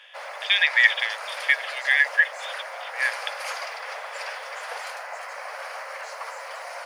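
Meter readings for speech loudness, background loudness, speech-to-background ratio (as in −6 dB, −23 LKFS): −21.0 LKFS, −34.0 LKFS, 13.0 dB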